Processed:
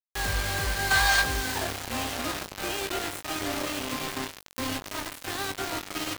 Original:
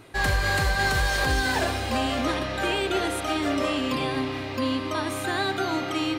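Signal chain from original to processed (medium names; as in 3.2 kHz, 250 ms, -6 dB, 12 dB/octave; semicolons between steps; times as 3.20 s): time-frequency box 0.91–1.21 s, 640–10000 Hz +12 dB; bit crusher 4-bit; doubling 20 ms -9 dB; trim -7.5 dB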